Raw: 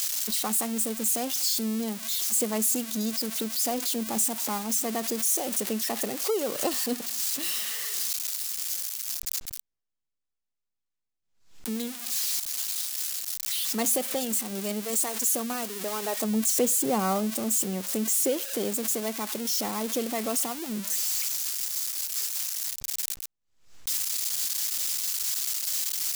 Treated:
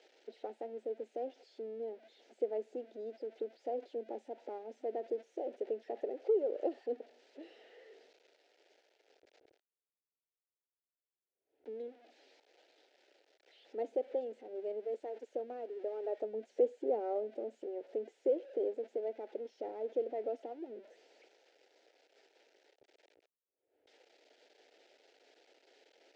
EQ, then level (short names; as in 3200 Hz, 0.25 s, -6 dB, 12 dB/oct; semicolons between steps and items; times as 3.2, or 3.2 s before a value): ladder band-pass 520 Hz, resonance 30%; air absorption 120 m; fixed phaser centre 460 Hz, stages 4; +6.5 dB